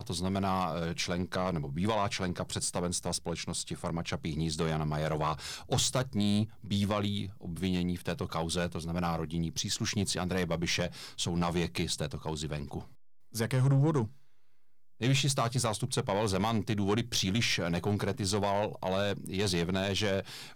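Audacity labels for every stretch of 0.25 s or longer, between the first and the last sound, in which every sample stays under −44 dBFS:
12.880000	13.340000	silence
14.110000	15.010000	silence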